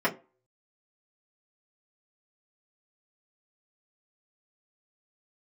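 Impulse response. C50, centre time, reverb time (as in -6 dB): 17.0 dB, 11 ms, 0.30 s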